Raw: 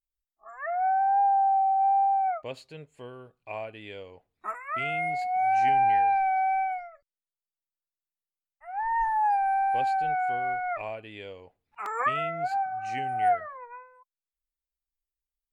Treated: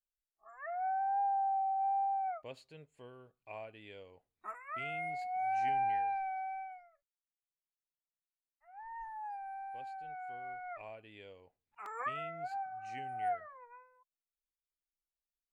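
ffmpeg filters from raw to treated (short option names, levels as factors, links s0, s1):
-af "volume=0.75,afade=t=out:st=5.81:d=1.01:silence=0.354813,afade=t=in:st=10.02:d=1.11:silence=0.421697"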